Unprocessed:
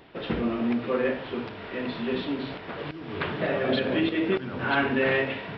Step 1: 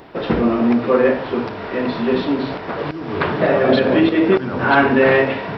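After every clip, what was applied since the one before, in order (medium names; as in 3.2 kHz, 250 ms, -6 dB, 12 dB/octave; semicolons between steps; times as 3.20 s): FFT filter 110 Hz 0 dB, 990 Hz +4 dB, 3.2 kHz -5 dB, 5.8 kHz +5 dB; trim +9 dB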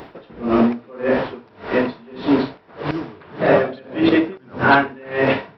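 in parallel at +1 dB: peak limiter -10 dBFS, peak gain reduction 8 dB; on the sum: logarithmic tremolo 1.7 Hz, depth 29 dB; trim -1.5 dB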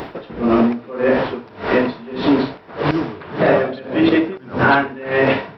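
compression 2.5:1, threshold -23 dBFS, peak gain reduction 10 dB; trim +8.5 dB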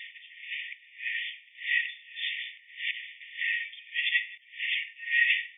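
brick-wall FIR band-pass 1.8–3.6 kHz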